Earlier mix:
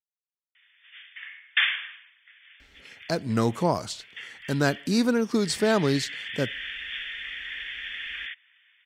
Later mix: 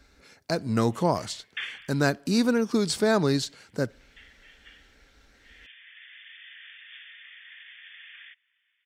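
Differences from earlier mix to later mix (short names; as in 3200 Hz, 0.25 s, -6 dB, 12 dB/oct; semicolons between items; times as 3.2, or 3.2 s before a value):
speech: entry -2.60 s; background -12.0 dB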